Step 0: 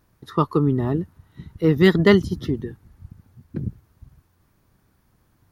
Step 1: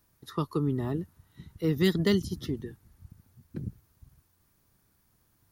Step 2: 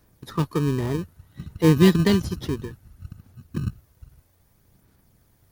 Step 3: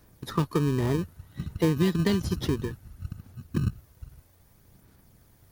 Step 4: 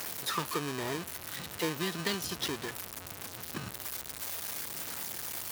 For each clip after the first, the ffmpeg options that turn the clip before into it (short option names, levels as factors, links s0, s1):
-filter_complex "[0:a]highshelf=f=3900:g=11.5,acrossover=split=410|3000[s0][s1][s2];[s1]acompressor=threshold=0.0562:ratio=6[s3];[s0][s3][s2]amix=inputs=3:normalize=0,volume=0.376"
-filter_complex "[0:a]aphaser=in_gain=1:out_gain=1:delay=2.1:decay=0.39:speed=0.61:type=sinusoidal,asplit=2[s0][s1];[s1]acrusher=samples=32:mix=1:aa=0.000001,volume=0.596[s2];[s0][s2]amix=inputs=2:normalize=0,volume=1.41"
-af "acompressor=threshold=0.0708:ratio=6,volume=1.33"
-af "aeval=exprs='val(0)+0.5*0.0376*sgn(val(0))':c=same,highpass=f=1200:p=1"